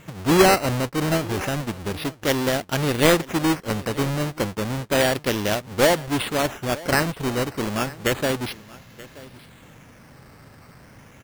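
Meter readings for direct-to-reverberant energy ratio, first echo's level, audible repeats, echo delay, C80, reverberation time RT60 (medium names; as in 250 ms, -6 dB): no reverb, -20.0 dB, 1, 929 ms, no reverb, no reverb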